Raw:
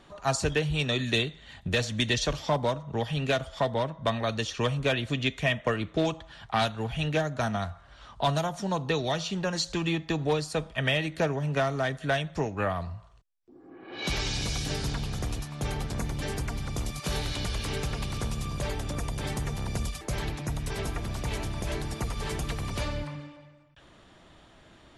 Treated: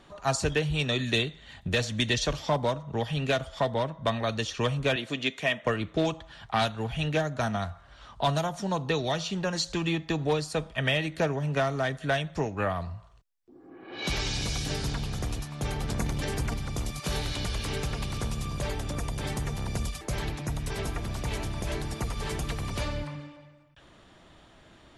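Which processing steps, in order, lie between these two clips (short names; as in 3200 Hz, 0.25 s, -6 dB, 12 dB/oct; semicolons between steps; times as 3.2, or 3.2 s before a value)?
4.96–5.63 HPF 230 Hz 12 dB/oct; 15.83–16.54 transient shaper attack +7 dB, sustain +11 dB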